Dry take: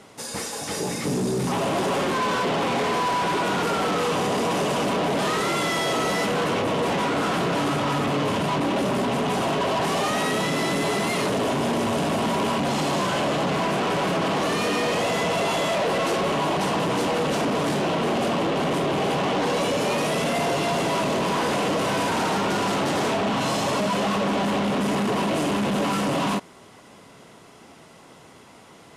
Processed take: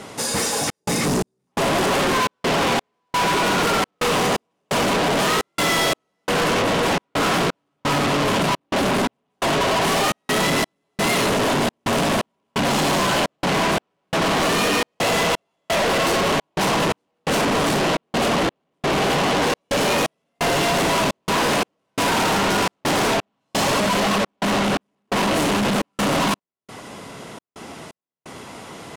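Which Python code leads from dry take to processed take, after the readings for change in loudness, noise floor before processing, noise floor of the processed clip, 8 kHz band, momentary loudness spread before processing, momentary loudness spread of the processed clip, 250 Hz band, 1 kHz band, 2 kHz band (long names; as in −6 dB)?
+3.0 dB, −48 dBFS, −73 dBFS, +6.5 dB, 1 LU, 8 LU, +1.0 dB, +2.5 dB, +5.0 dB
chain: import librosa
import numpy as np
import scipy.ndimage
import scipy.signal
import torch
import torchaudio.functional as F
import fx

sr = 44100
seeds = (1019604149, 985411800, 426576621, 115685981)

p1 = fx.step_gate(x, sr, bpm=86, pattern='xxxx.xx..', floor_db=-60.0, edge_ms=4.5)
p2 = fx.fold_sine(p1, sr, drive_db=8, ceiling_db=-18.0)
y = p1 + (p2 * librosa.db_to_amplitude(-4.0))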